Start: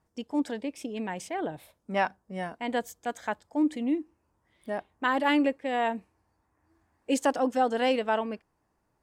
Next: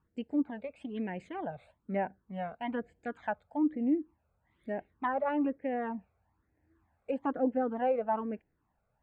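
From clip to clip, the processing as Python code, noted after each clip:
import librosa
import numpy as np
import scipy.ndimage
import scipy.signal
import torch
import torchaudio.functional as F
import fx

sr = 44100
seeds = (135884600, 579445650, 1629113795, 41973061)

y = fx.env_lowpass_down(x, sr, base_hz=1200.0, full_db=-25.5)
y = fx.phaser_stages(y, sr, stages=12, low_hz=300.0, high_hz=1200.0, hz=1.1, feedback_pct=0)
y = scipy.signal.lfilter(np.full(8, 1.0 / 8), 1.0, y)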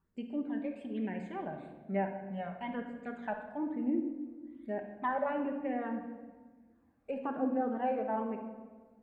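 y = fx.room_shoebox(x, sr, seeds[0], volume_m3=1200.0, walls='mixed', distance_m=1.2)
y = y * librosa.db_to_amplitude(-3.5)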